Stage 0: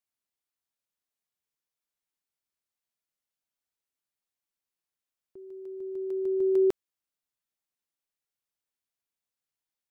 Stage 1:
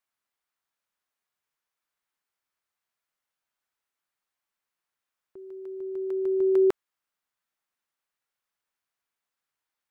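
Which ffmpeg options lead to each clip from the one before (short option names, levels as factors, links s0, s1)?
-af "equalizer=f=1300:t=o:w=2.1:g=10"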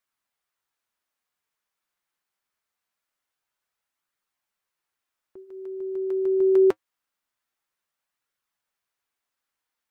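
-af "flanger=delay=0.5:depth=5.5:regen=-62:speed=0.24:shape=triangular,volume=2.11"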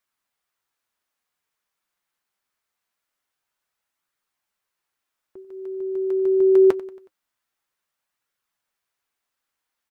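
-af "aecho=1:1:92|184|276|368:0.106|0.054|0.0276|0.0141,volume=1.33"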